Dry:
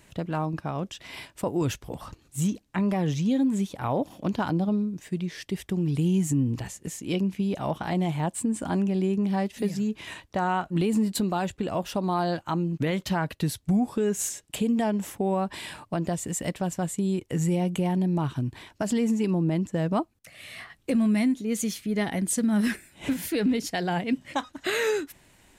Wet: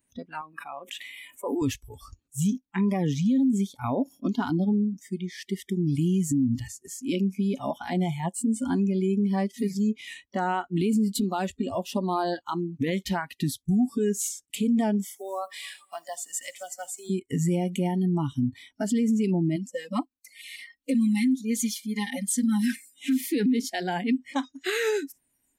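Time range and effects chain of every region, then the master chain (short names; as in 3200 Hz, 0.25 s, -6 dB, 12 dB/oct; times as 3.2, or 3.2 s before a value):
0.41–1.62 HPF 460 Hz 6 dB/oct + bell 5300 Hz -14.5 dB 0.69 oct + sustainer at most 27 dB/s
15.04–17.1 block floating point 7-bit + HPF 650 Hz + multi-head echo 81 ms, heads first and third, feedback 54%, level -19 dB
19.56–23.21 low shelf 390 Hz -10 dB + comb 3.8 ms, depth 97% + LFO notch saw down 7 Hz 510–2400 Hz
whole clip: spectral noise reduction 24 dB; bell 260 Hz +11.5 dB 0.32 oct; limiter -17.5 dBFS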